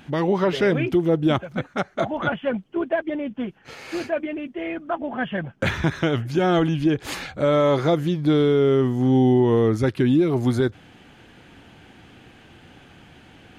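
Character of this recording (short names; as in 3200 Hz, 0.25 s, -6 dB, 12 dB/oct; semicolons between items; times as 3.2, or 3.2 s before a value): noise floor -51 dBFS; spectral tilt -6.0 dB/oct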